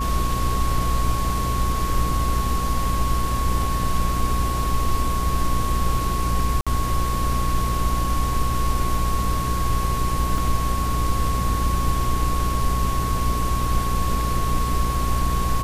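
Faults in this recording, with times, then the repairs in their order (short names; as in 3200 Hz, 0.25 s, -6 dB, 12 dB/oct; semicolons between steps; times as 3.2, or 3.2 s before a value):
buzz 60 Hz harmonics 9 -25 dBFS
tone 1100 Hz -26 dBFS
6.61–6.67 gap 56 ms
10.38 gap 2.4 ms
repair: notch 1100 Hz, Q 30; de-hum 60 Hz, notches 9; interpolate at 6.61, 56 ms; interpolate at 10.38, 2.4 ms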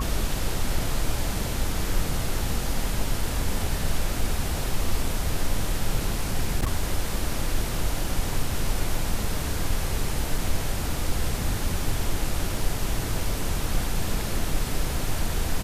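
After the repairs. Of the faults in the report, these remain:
none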